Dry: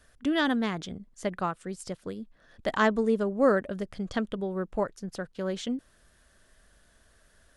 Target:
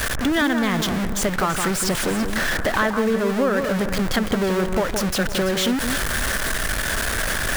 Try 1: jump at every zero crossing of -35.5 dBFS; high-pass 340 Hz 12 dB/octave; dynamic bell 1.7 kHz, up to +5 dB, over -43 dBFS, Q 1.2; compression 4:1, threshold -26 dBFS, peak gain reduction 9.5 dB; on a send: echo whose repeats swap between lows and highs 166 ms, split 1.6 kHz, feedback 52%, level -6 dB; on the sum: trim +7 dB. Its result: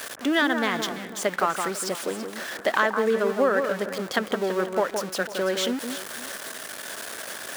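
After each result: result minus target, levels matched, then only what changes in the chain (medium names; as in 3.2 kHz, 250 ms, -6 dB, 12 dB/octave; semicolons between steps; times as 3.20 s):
jump at every zero crossing: distortion -8 dB; 250 Hz band -3.0 dB
change: jump at every zero crossing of -26 dBFS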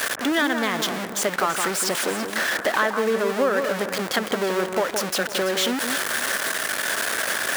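250 Hz band -5.0 dB
remove: high-pass 340 Hz 12 dB/octave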